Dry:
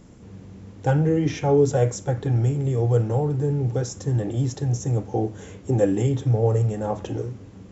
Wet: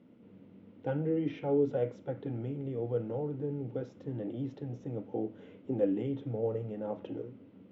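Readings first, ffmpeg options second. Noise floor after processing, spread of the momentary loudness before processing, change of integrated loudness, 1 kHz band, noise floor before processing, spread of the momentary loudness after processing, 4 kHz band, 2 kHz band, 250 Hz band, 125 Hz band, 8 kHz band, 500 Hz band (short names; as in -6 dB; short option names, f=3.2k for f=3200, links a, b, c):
-57 dBFS, 10 LU, -12.0 dB, -15.0 dB, -45 dBFS, 10 LU, under -15 dB, -14.0 dB, -9.0 dB, -18.0 dB, n/a, -9.5 dB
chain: -af "highpass=240,equalizer=f=250:t=q:w=4:g=5,equalizer=f=390:t=q:w=4:g=-4,equalizer=f=770:t=q:w=4:g=-8,equalizer=f=1.1k:t=q:w=4:g=-9,equalizer=f=1.7k:t=q:w=4:g=-10,equalizer=f=2.4k:t=q:w=4:g=-4,lowpass=f=2.8k:w=0.5412,lowpass=f=2.8k:w=1.3066,volume=-7dB"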